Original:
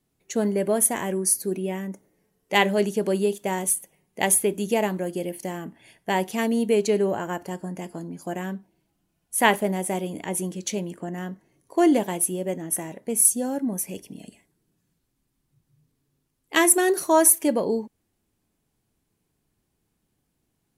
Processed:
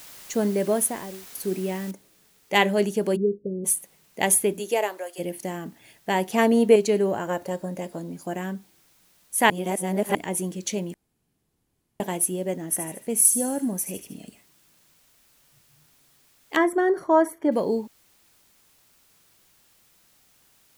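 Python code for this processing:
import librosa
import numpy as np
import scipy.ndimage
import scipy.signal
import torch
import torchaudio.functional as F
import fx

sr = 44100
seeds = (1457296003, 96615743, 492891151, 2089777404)

y = fx.studio_fade_out(x, sr, start_s=0.68, length_s=0.67)
y = fx.noise_floor_step(y, sr, seeds[0], at_s=1.91, before_db=-45, after_db=-61, tilt_db=0.0)
y = fx.steep_lowpass(y, sr, hz=510.0, slope=72, at=(3.15, 3.64), fade=0.02)
y = fx.highpass(y, sr, hz=fx.line((4.58, 260.0), (5.18, 660.0)), slope=24, at=(4.58, 5.18), fade=0.02)
y = fx.peak_eq(y, sr, hz=760.0, db=8.0, octaves=2.9, at=(6.32, 6.76))
y = fx.small_body(y, sr, hz=(550.0, 3800.0), ring_ms=45, db=11, at=(7.27, 8.14))
y = fx.echo_wet_highpass(y, sr, ms=76, feedback_pct=50, hz=2100.0, wet_db=-8.5, at=(12.68, 14.17), fade=0.02)
y = fx.savgol(y, sr, points=41, at=(16.56, 17.52))
y = fx.edit(y, sr, fx.reverse_span(start_s=9.5, length_s=0.65),
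    fx.room_tone_fill(start_s=10.94, length_s=1.06), tone=tone)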